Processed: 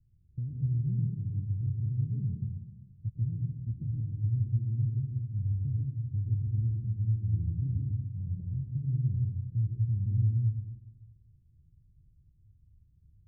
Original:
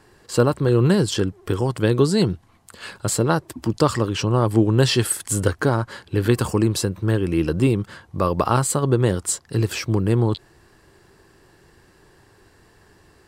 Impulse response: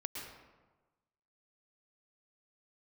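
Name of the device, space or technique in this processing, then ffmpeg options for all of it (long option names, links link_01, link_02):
club heard from the street: -filter_complex "[0:a]alimiter=limit=-10.5dB:level=0:latency=1:release=345,lowpass=frequency=130:width=0.5412,lowpass=frequency=130:width=1.3066[link_01];[1:a]atrim=start_sample=2205[link_02];[link_01][link_02]afir=irnorm=-1:irlink=0,volume=-1.5dB"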